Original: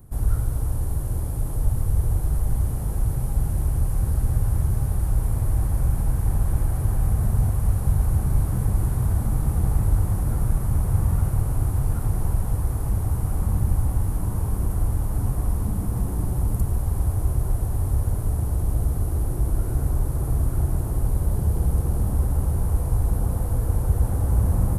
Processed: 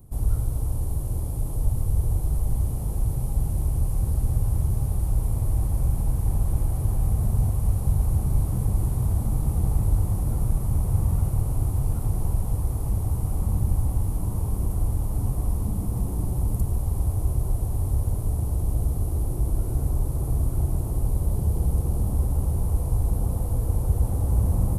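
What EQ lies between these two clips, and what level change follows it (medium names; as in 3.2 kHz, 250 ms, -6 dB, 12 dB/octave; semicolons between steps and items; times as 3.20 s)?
peaking EQ 1.6 kHz -10.5 dB 0.72 oct; -1.5 dB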